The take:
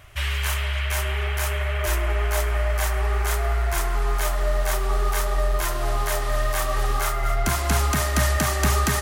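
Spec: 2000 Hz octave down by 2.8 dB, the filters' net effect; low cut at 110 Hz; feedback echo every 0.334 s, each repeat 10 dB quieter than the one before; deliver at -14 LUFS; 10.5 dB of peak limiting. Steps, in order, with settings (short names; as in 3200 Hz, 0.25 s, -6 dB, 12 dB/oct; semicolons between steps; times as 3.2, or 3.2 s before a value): HPF 110 Hz; bell 2000 Hz -3.5 dB; limiter -20 dBFS; feedback echo 0.334 s, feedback 32%, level -10 dB; gain +15 dB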